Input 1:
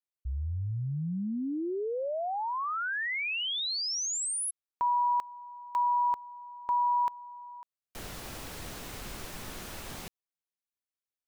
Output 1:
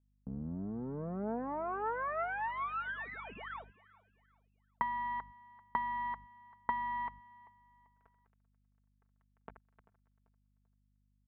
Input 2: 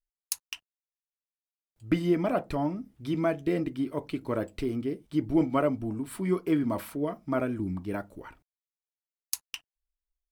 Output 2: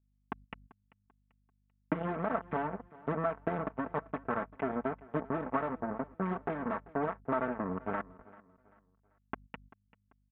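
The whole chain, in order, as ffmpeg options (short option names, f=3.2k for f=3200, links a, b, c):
-filter_complex "[0:a]aeval=exprs='if(lt(val(0),0),0.251*val(0),val(0))':c=same,aresample=8000,acrusher=bits=4:mix=0:aa=0.5,aresample=44100,tiltshelf=f=970:g=-4.5,acompressor=threshold=-43dB:ratio=5:attack=73:release=103:knee=6:detection=peak,adynamicequalizer=threshold=0.00224:dfrequency=360:dqfactor=0.87:tfrequency=360:tqfactor=0.87:attack=5:release=100:ratio=0.375:range=3:mode=cutabove:tftype=bell,highpass=130,aecho=1:1:4.5:0.51,aeval=exprs='val(0)+0.000631*(sin(2*PI*50*n/s)+sin(2*PI*2*50*n/s)/2+sin(2*PI*3*50*n/s)/3+sin(2*PI*4*50*n/s)/4+sin(2*PI*5*50*n/s)/5)':c=same,agate=range=-16dB:threshold=-58dB:ratio=16:release=192:detection=peak,lowpass=f=1.5k:w=0.5412,lowpass=f=1.5k:w=1.3066,asplit=2[a][b];[b]aecho=0:1:390|780|1170:0.0891|0.0321|0.0116[c];[a][c]amix=inputs=2:normalize=0,volume=7dB"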